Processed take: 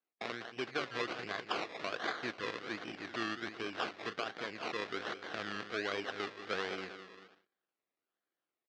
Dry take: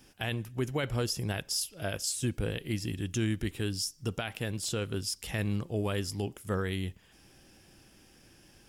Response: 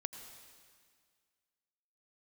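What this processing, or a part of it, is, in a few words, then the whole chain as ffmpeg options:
circuit-bent sampling toy: -filter_complex "[0:a]asettb=1/sr,asplit=3[a][b][c];[a]atrim=end=2.114[d];[b]atrim=start=2.11:end=2.61,asetpts=PTS-STARTPTS,afade=t=in:d=0.004:c=qsin,afade=t=out:st=0.496:d=0.004:c=qsin,lowpass=6.8k[e];[c]atrim=start=2.606[f];[d][e]acrossfade=d=0.004:c1=hsin:c2=qsin[g];[g][f]acrossfade=d=0.004:c1=qsin:c2=hsin,asettb=1/sr,asplit=3[h][i][j];[h]atrim=end=3.764[k];[i]atrim=start=3.76:end=4.31,asetpts=PTS-STARTPTS,afade=t=in:d=0.004:c=qsin,afade=t=out:st=0.546:d=0.004:c=qsin,asplit=2[l][m];[m]adelay=37,volume=-11dB[n];[l][n]amix=inputs=2:normalize=0,atrim=end_sample=24255[o];[j]atrim=start=4.306[p];[k][o]acrossfade=d=0.004:c1=hsin:c2=qsin[q];[q][p]acrossfade=d=0.004:c1=qsin:c2=hsin,aecho=1:1:196|392|588|784|980:0.299|0.149|0.0746|0.0373|0.0187,acrusher=samples=23:mix=1:aa=0.000001:lfo=1:lforange=13.8:lforate=1.3,highpass=510,equalizer=f=570:t=q:w=4:g=-5,equalizer=f=910:t=q:w=4:g=-9,equalizer=f=1.6k:t=q:w=4:g=4,lowpass=f=4.7k:w=0.5412,lowpass=f=4.7k:w=1.3066,agate=range=-29dB:threshold=-57dB:ratio=16:detection=peak,volume=1dB"

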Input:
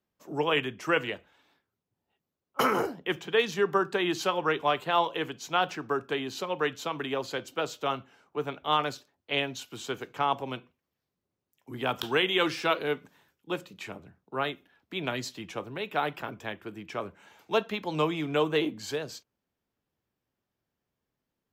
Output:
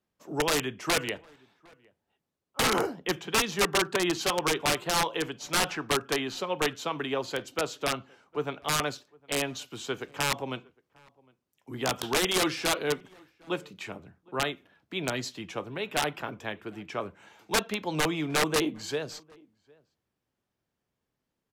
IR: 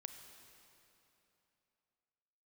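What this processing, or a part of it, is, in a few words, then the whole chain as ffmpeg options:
overflowing digital effects unit: -filter_complex "[0:a]asettb=1/sr,asplit=3[a][b][c];[a]atrim=end=5.484[d];[b]atrim=start=5.48:end=6.35,asetpts=PTS-STARTPTS,afade=t=in:d=0.004:c=qsin,afade=t=out:st=0.866:d=0.004:c=qsin,equalizer=f=1.7k:w=0.56:g=4[e];[c]atrim=start=6.346[f];[d][e]acrossfade=d=0.004:c1=hsin:c2=qsin[g];[g][f]acrossfade=d=0.004:c1=qsin:c2=hsin,aeval=exprs='(mod(8.41*val(0)+1,2)-1)/8.41':c=same,lowpass=12k,asplit=2[h][i];[i]adelay=758,volume=-27dB,highshelf=f=4k:g=-17.1[j];[h][j]amix=inputs=2:normalize=0,volume=1dB"

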